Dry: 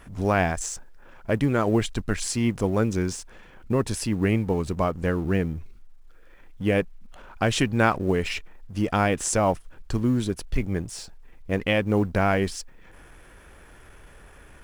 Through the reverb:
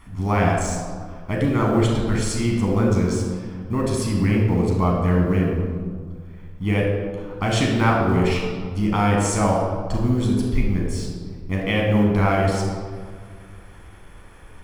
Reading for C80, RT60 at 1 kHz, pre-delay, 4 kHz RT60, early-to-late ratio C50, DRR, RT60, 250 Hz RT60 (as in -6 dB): 3.0 dB, 1.9 s, 11 ms, 1.1 s, 1.0 dB, -2.0 dB, 1.9 s, 2.2 s